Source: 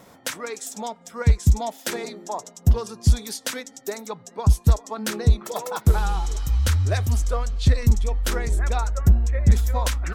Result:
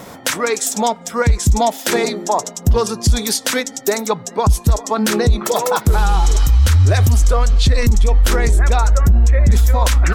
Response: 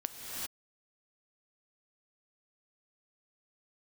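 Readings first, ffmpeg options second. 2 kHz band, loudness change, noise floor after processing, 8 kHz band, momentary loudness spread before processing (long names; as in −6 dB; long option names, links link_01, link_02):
+10.5 dB, +7.5 dB, −37 dBFS, +11.0 dB, 13 LU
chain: -af "alimiter=level_in=19.5dB:limit=-1dB:release=50:level=0:latency=1,volume=-5dB"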